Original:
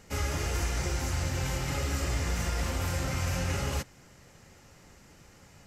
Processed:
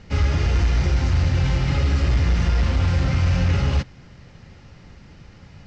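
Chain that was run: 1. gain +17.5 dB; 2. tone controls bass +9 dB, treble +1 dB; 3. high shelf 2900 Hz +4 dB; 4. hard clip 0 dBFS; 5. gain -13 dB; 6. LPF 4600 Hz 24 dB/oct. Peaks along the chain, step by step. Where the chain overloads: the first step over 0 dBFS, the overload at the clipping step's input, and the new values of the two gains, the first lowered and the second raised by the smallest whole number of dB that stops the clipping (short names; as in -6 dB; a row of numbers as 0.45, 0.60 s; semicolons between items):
-1.5, +4.5, +5.0, 0.0, -13.0, -12.5 dBFS; step 2, 5.0 dB; step 1 +12.5 dB, step 5 -8 dB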